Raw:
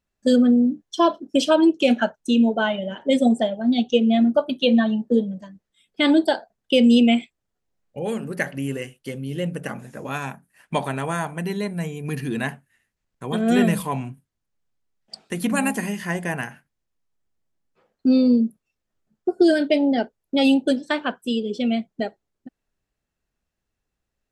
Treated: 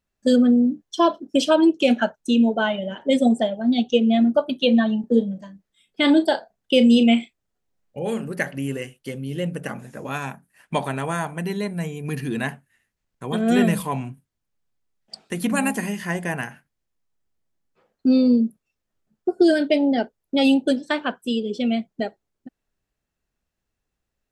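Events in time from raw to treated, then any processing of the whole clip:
0:05.00–0:08.29: double-tracking delay 35 ms −11.5 dB

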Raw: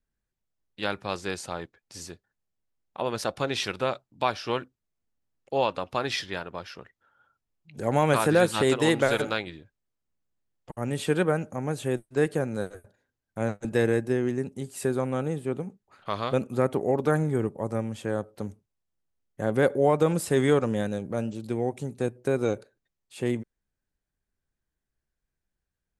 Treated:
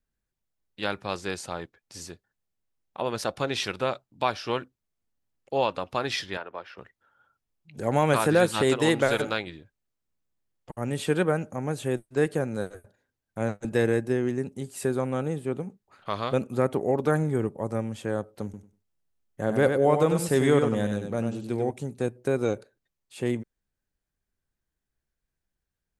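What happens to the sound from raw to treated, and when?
0:06.37–0:06.78: three-way crossover with the lows and the highs turned down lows −15 dB, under 320 Hz, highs −16 dB, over 3,100 Hz
0:18.44–0:21.71: repeating echo 96 ms, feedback 19%, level −6 dB

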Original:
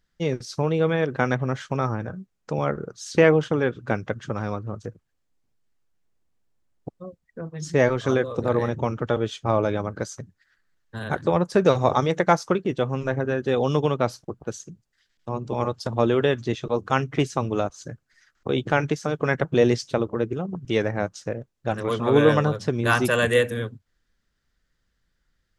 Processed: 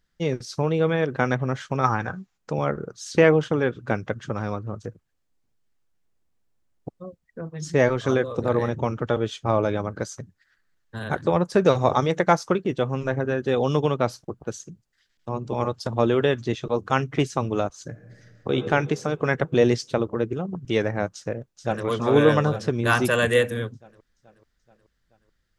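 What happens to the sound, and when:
0:01.84–0:02.37: gain on a spectral selection 700–7,500 Hz +10 dB
0:17.89–0:18.54: thrown reverb, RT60 2.2 s, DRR 5 dB
0:21.13–0:21.85: delay throw 430 ms, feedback 60%, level −7.5 dB

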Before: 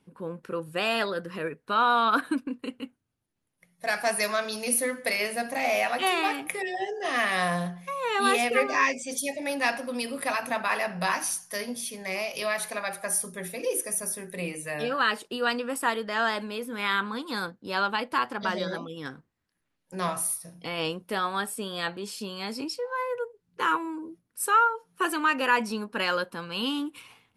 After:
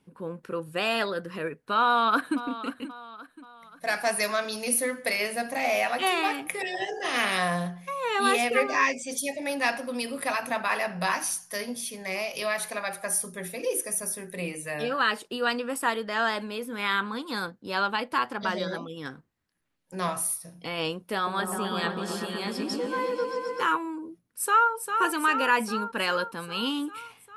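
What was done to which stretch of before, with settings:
0:01.83–0:02.39: delay throw 530 ms, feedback 45%, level −14 dB
0:06.59–0:07.37: ceiling on every frequency bin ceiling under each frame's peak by 12 dB
0:21.14–0:23.63: echo whose low-pass opens from repeat to repeat 126 ms, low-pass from 400 Hz, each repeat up 1 octave, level 0 dB
0:24.24–0:24.71: delay throw 400 ms, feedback 70%, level −6.5 dB

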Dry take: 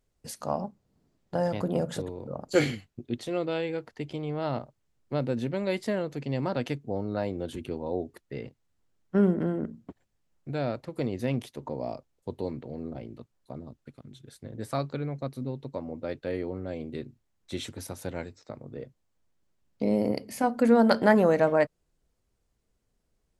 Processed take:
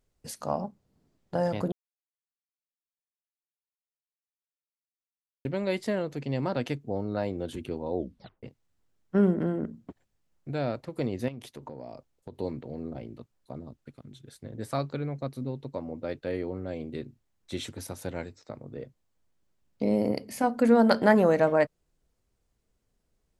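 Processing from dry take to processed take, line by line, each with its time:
0:01.72–0:05.45: silence
0:07.97: tape stop 0.46 s
0:11.28–0:12.36: downward compressor 10 to 1, threshold −36 dBFS

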